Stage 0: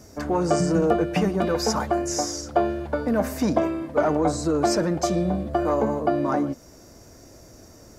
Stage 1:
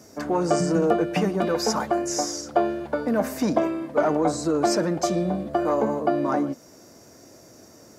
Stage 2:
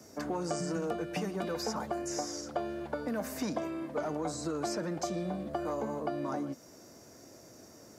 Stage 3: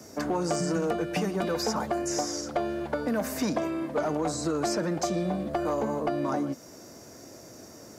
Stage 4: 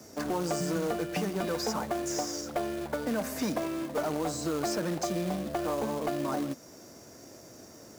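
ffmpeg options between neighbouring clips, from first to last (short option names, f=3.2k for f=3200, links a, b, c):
-af "highpass=150"
-filter_complex "[0:a]acrossover=split=150|1000|3600[a][b][c][d];[a]acompressor=threshold=-41dB:ratio=4[e];[b]acompressor=threshold=-30dB:ratio=4[f];[c]acompressor=threshold=-40dB:ratio=4[g];[d]acompressor=threshold=-37dB:ratio=4[h];[e][f][g][h]amix=inputs=4:normalize=0,volume=-4.5dB"
-af "asoftclip=type=hard:threshold=-26.5dB,volume=6.5dB"
-af "acrusher=bits=3:mode=log:mix=0:aa=0.000001,volume=-3dB"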